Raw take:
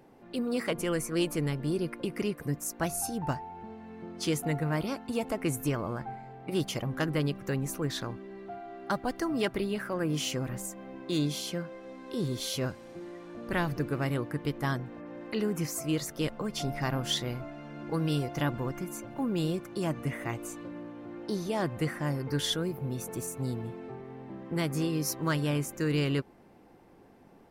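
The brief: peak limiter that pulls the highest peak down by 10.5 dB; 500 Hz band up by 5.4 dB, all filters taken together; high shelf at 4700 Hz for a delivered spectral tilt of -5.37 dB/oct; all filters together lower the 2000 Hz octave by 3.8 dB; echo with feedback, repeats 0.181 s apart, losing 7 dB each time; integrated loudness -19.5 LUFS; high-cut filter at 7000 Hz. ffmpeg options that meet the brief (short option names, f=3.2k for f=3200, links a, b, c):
-af "lowpass=7k,equalizer=f=500:t=o:g=7,equalizer=f=2k:t=o:g=-6,highshelf=f=4.7k:g=4,alimiter=level_in=1.5dB:limit=-24dB:level=0:latency=1,volume=-1.5dB,aecho=1:1:181|362|543|724|905:0.447|0.201|0.0905|0.0407|0.0183,volume=14.5dB"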